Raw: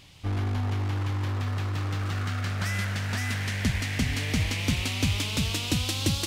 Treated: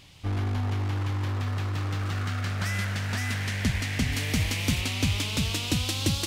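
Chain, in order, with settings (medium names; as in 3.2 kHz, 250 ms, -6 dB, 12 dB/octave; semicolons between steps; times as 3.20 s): 4.12–4.81 s: treble shelf 9.2 kHz +7.5 dB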